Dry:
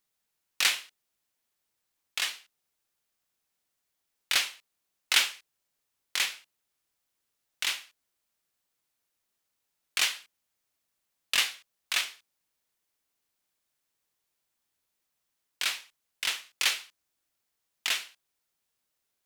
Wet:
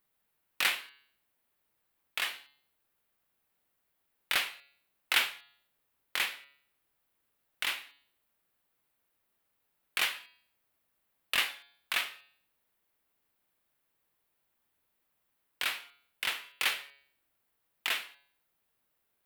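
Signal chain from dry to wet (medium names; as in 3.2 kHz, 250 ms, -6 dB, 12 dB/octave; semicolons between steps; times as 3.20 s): peaking EQ 6.2 kHz -13.5 dB 1.4 oct; de-hum 140.9 Hz, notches 34; in parallel at -1 dB: compression, threshold -42 dBFS, peak gain reduction 18.5 dB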